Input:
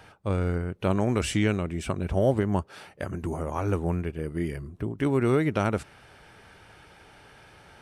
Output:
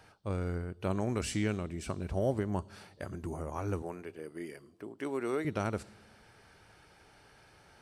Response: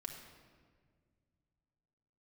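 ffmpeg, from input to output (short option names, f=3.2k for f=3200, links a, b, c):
-filter_complex "[0:a]asettb=1/sr,asplit=3[a][b][c];[a]atrim=end=3.824[d];[b]atrim=start=3.82:end=5.45,asetpts=PTS-STARTPTS,afade=t=in:d=0.004:c=qsin,afade=t=out:st=1.626:d=0.004:c=qsin,highpass=330[e];[c]atrim=start=5.446[f];[d][e]acrossfade=d=0.004:c1=hsin:c2=qsin[g];[g][f]acrossfade=d=0.004:c1=qsin:c2=hsin,asplit=2[h][i];[i]highshelf=f=3k:t=q:w=3:g=12[j];[1:a]atrim=start_sample=2205,asetrate=66150,aresample=44100[k];[j][k]afir=irnorm=-1:irlink=0,volume=-11.5dB[l];[h][l]amix=inputs=2:normalize=0,volume=-8.5dB"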